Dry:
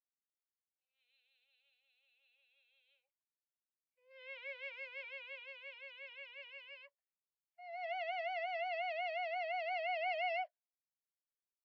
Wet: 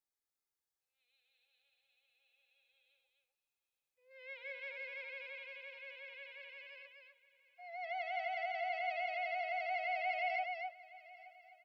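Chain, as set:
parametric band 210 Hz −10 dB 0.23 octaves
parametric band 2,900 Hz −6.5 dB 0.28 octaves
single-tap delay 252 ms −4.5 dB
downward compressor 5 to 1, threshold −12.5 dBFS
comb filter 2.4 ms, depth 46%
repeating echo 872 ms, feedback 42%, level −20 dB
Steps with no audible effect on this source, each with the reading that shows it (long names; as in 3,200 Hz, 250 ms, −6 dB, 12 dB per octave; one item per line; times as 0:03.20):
parametric band 210 Hz: nothing at its input below 480 Hz
downward compressor, threshold −12.5 dBFS: peak of its input −28.0 dBFS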